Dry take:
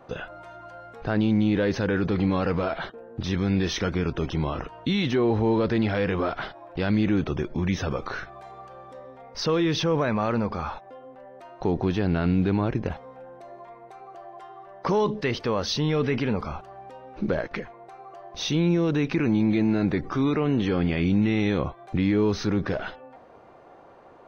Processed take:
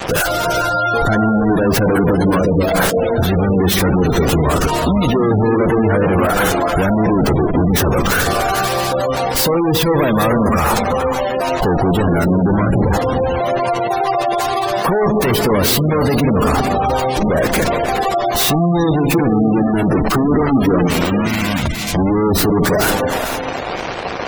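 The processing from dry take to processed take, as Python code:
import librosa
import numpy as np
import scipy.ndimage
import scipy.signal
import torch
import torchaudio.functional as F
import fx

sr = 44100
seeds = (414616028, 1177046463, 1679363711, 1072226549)

p1 = fx.fuzz(x, sr, gain_db=50.0, gate_db=-49.0)
p2 = fx.spec_box(p1, sr, start_s=2.39, length_s=0.34, low_hz=680.0, high_hz=2800.0, gain_db=-12)
p3 = fx.ellip_bandstop(p2, sr, low_hz=270.0, high_hz=2100.0, order=3, stop_db=50, at=(20.88, 21.96))
p4 = fx.bass_treble(p3, sr, bass_db=0, treble_db=9)
p5 = (np.mod(10.0 ** (10.5 / 20.0) * p4 + 1.0, 2.0) - 1.0) / 10.0 ** (10.5 / 20.0)
p6 = p5 + fx.echo_feedback(p5, sr, ms=891, feedback_pct=43, wet_db=-23, dry=0)
p7 = fx.rev_gated(p6, sr, seeds[0], gate_ms=480, shape='rising', drr_db=5.0)
y = fx.spec_gate(p7, sr, threshold_db=-20, keep='strong')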